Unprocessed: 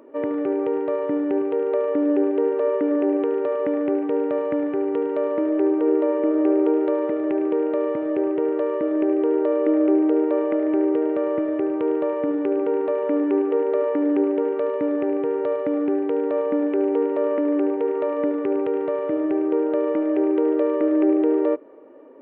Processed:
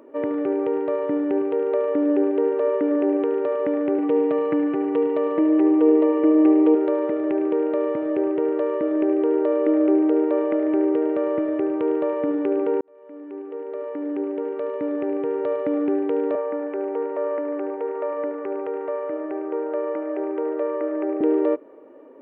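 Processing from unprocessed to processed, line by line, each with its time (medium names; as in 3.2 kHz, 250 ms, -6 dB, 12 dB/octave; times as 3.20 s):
3.98–6.75 s: comb 6.1 ms, depth 85%
12.81–15.73 s: fade in
16.35–21.21 s: three-band isolator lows -14 dB, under 440 Hz, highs -23 dB, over 2.5 kHz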